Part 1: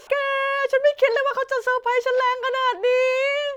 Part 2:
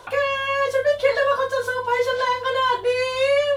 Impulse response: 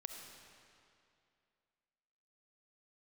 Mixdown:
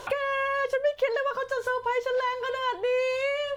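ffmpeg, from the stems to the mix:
-filter_complex "[0:a]lowshelf=f=200:g=12,volume=-3.5dB,asplit=2[a][b];[1:a]acompressor=threshold=-26dB:ratio=6,volume=1dB[c];[b]apad=whole_len=157290[d];[c][d]sidechaincompress=threshold=-25dB:ratio=8:attack=16:release=805[e];[a][e]amix=inputs=2:normalize=0,acompressor=threshold=-31dB:ratio=1.5"

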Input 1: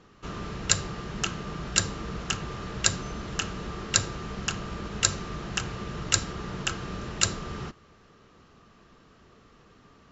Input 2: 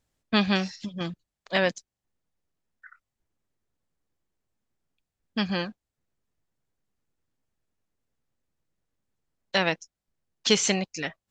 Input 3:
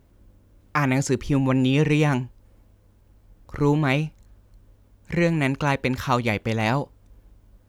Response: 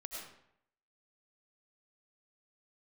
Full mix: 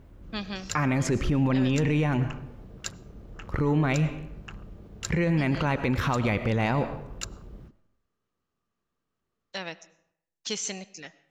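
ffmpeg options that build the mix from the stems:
-filter_complex "[0:a]afwtdn=0.0224,volume=-12dB,asplit=2[a][b];[b]volume=-22dB[c];[1:a]equalizer=f=6.5k:t=o:w=0.95:g=7,volume=-13dB,asplit=2[d][e];[e]volume=-14dB[f];[2:a]bass=f=250:g=1,treble=f=4k:g=-10,alimiter=limit=-17dB:level=0:latency=1:release=10,volume=3dB,asplit=2[g][h];[h]volume=-6.5dB[i];[3:a]atrim=start_sample=2205[j];[c][f][i]amix=inputs=3:normalize=0[k];[k][j]afir=irnorm=-1:irlink=0[l];[a][d][g][l]amix=inputs=4:normalize=0,alimiter=limit=-16dB:level=0:latency=1:release=47"

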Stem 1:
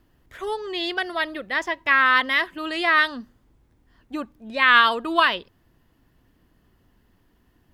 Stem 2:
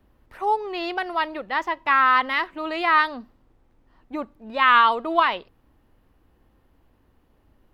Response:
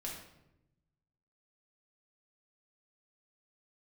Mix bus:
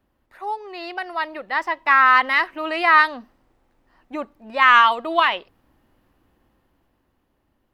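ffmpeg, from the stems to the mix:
-filter_complex "[0:a]asoftclip=type=tanh:threshold=-4dB,volume=-16dB[a];[1:a]volume=-1,volume=-5dB[b];[a][b]amix=inputs=2:normalize=0,lowshelf=f=120:g=-8,bandreject=f=450:w=12,dynaudnorm=f=230:g=13:m=11dB"

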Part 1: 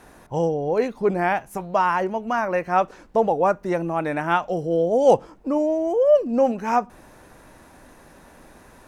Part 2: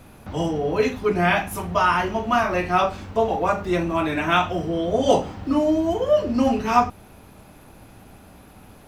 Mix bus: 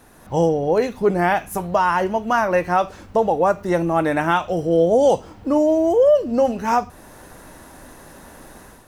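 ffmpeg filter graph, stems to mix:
-filter_complex "[0:a]alimiter=limit=-12.5dB:level=0:latency=1:release=448,dynaudnorm=f=100:g=5:m=9dB,bandreject=f=2.4k:w=9.7,volume=-3.5dB[a];[1:a]acrossover=split=120|3000[b][c][d];[c]acompressor=threshold=-21dB:ratio=6[e];[b][e][d]amix=inputs=3:normalize=0,volume=-1,volume=-8.5dB[f];[a][f]amix=inputs=2:normalize=0,highshelf=f=7.9k:g=7.5"

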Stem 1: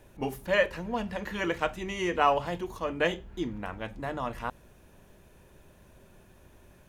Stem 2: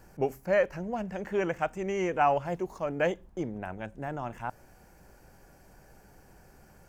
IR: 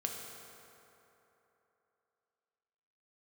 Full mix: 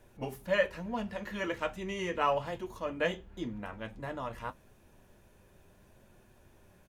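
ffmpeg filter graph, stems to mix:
-filter_complex "[0:a]volume=-1dB[a];[1:a]volume=-1,adelay=0.5,volume=-11dB[b];[a][b]amix=inputs=2:normalize=0,flanger=delay=8.3:depth=2.2:regen=-49:speed=0.8:shape=sinusoidal"

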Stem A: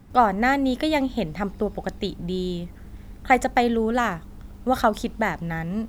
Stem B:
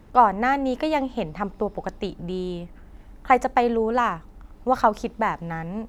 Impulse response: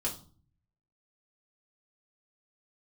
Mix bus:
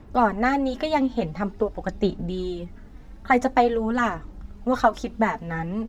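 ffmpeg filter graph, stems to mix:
-filter_complex "[0:a]lowpass=f=7k:w=0.5412,lowpass=f=7k:w=1.3066,asplit=2[a][b];[b]adelay=3.3,afreqshift=1.6[c];[a][c]amix=inputs=2:normalize=1,volume=2.5dB[d];[1:a]aphaser=in_gain=1:out_gain=1:delay=4.5:decay=0.6:speed=0.47:type=sinusoidal,adelay=0.4,volume=-1dB[e];[d][e]amix=inputs=2:normalize=0,flanger=delay=2.8:depth=2.1:regen=-59:speed=1.2:shape=sinusoidal"

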